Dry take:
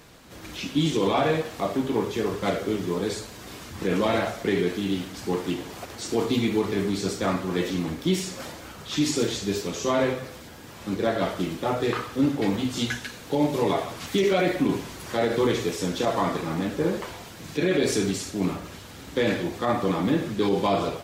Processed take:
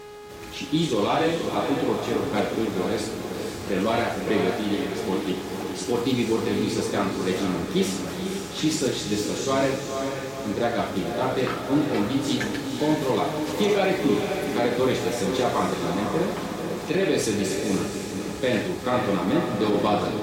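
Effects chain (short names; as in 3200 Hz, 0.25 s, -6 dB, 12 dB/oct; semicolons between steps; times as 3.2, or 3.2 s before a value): buzz 400 Hz, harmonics 24, -42 dBFS -8 dB/oct; varispeed +4%; diffused feedback echo 0.494 s, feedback 48%, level -5.5 dB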